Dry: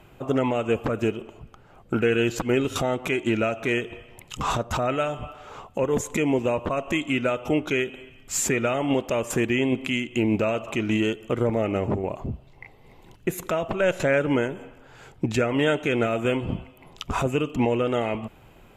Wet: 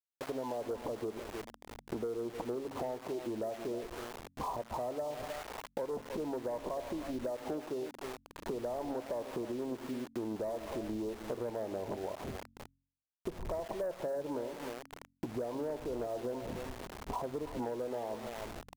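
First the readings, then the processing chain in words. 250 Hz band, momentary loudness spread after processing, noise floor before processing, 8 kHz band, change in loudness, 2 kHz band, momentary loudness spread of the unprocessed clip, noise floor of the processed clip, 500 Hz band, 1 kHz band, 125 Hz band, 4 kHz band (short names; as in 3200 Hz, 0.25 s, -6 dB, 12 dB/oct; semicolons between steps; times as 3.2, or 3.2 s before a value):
-15.0 dB, 7 LU, -52 dBFS, -19.5 dB, -14.5 dB, -21.5 dB, 11 LU, -74 dBFS, -12.0 dB, -11.5 dB, -19.0 dB, -17.0 dB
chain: wind noise 82 Hz -40 dBFS; Chebyshev low-pass 1000 Hz, order 5; echo 0.311 s -14 dB; AGC gain up to 5 dB; sample gate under -32.5 dBFS; bell 130 Hz -4 dB 1.5 oct; soft clip -11 dBFS, distortion -22 dB; low shelf 240 Hz -11.5 dB; de-hum 45.52 Hz, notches 6; compressor 4:1, threshold -34 dBFS, peak gain reduction 13.5 dB; gain -2.5 dB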